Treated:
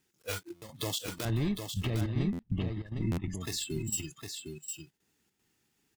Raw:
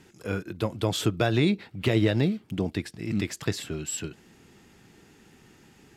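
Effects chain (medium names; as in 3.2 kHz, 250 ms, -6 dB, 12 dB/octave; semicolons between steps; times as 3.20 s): block-companded coder 3-bit; 1.25–3.35 s: RIAA curve playback; spectral noise reduction 24 dB; treble shelf 2.5 kHz +9 dB; compression 4:1, threshold -30 dBFS, peak gain reduction 17.5 dB; peak limiter -22 dBFS, peak gain reduction 9 dB; trance gate "xxxxxx.xxx." 153 bpm -12 dB; delay 758 ms -6 dB; buffer glitch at 0.55/2.32/3.11 s, samples 512, times 5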